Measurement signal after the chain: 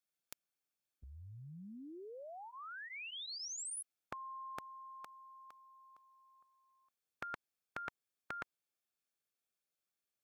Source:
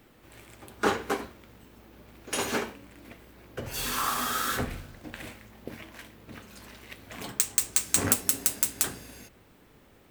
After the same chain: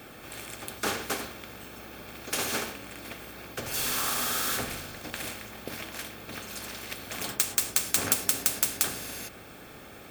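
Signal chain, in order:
notch comb filter 990 Hz
every bin compressed towards the loudest bin 2 to 1

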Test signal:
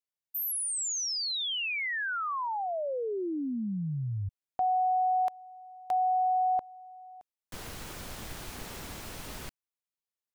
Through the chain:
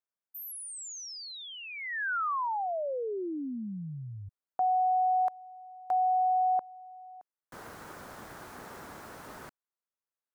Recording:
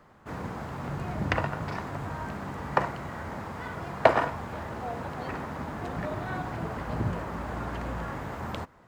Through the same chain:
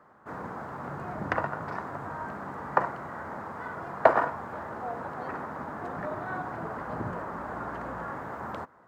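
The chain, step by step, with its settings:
high-pass filter 280 Hz 6 dB per octave
high shelf with overshoot 2,000 Hz −9 dB, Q 1.5

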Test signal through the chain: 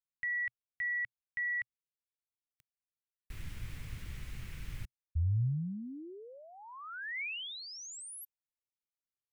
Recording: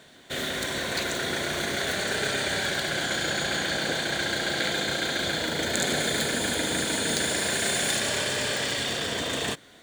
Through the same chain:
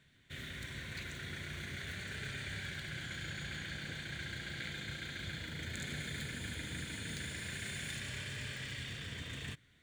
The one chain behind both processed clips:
drawn EQ curve 120 Hz 0 dB, 220 Hz −12 dB, 700 Hz −25 dB, 2,200 Hz −8 dB, 4,500 Hz −17 dB
level −3 dB

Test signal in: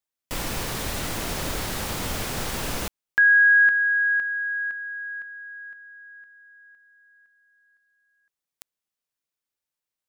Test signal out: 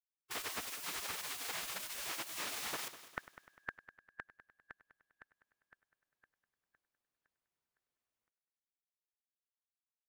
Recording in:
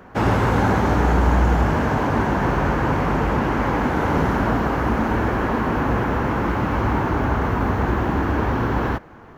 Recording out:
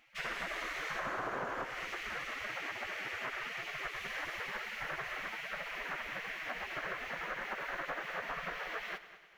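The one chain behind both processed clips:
gate on every frequency bin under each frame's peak −20 dB weak
high-shelf EQ 2,800 Hz −11 dB
downward compressor 6 to 1, threshold −37 dBFS
on a send: echo machine with several playback heads 100 ms, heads first and second, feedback 48%, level −17 dB
on the sum: level +1.5 dB

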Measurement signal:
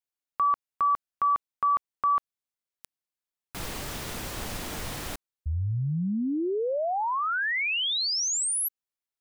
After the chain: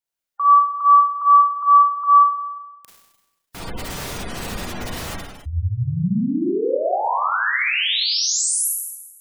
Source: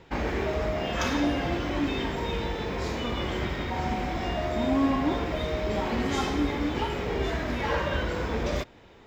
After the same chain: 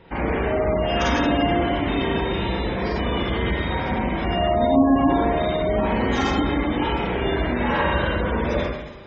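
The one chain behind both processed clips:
four-comb reverb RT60 1.1 s, combs from 33 ms, DRR −4 dB
gate on every frequency bin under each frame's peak −25 dB strong
level +1.5 dB

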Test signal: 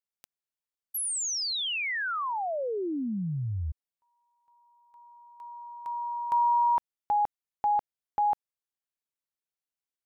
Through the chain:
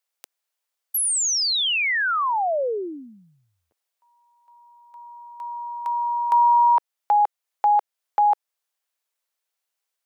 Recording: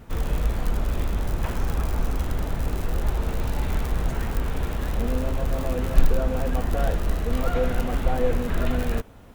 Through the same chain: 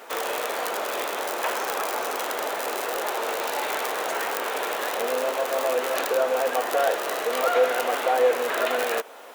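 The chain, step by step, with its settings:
high-pass filter 460 Hz 24 dB per octave
in parallel at −3 dB: downward compressor, threshold −38 dBFS
on the sum: level +6.5 dB

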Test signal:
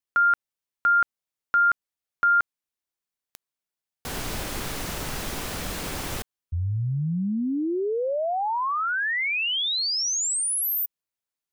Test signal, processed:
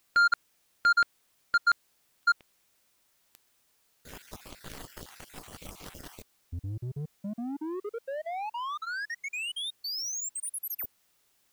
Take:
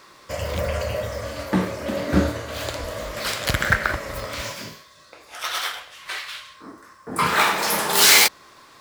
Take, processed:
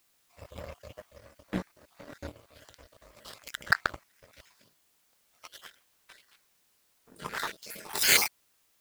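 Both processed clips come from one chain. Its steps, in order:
time-frequency cells dropped at random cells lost 40%
power curve on the samples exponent 2
background noise white −70 dBFS

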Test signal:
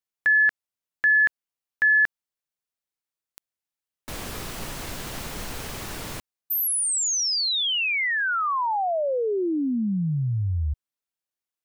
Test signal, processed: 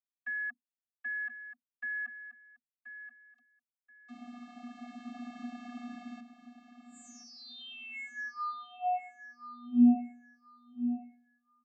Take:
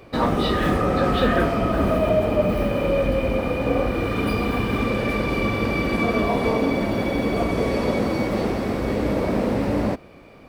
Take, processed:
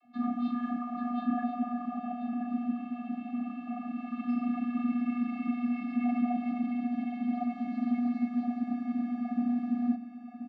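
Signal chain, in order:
frequency shifter +22 Hz
speech leveller within 4 dB 2 s
bass and treble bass −1 dB, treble −10 dB
channel vocoder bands 32, square 242 Hz
on a send: repeating echo 1,030 ms, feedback 24%, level −11 dB
on the sum: level −8.5 dB

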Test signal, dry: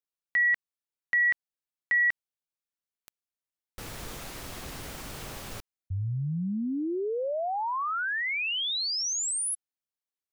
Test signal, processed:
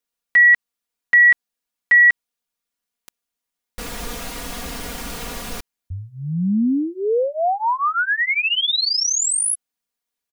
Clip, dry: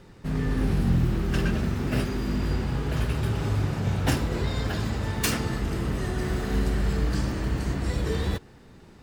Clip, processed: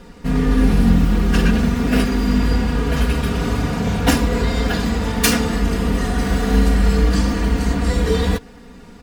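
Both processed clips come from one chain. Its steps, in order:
comb filter 4.2 ms, depth 95%
level +7 dB

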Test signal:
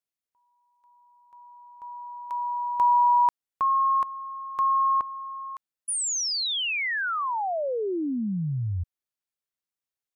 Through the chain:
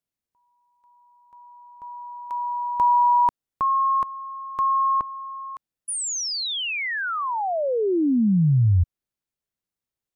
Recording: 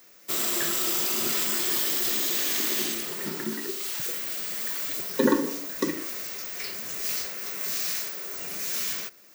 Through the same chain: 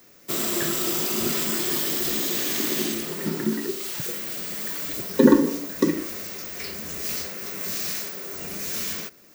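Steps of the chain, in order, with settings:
low-shelf EQ 420 Hz +11.5 dB

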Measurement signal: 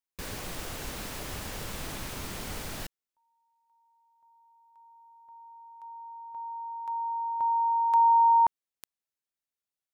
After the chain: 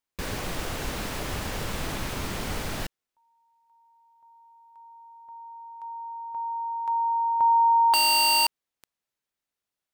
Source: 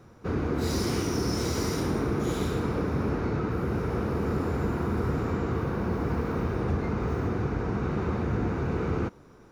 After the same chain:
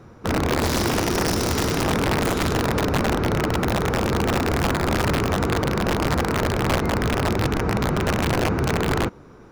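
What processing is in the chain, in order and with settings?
wrap-around overflow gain 21 dB
high-shelf EQ 5,300 Hz −6.5 dB
level +7 dB

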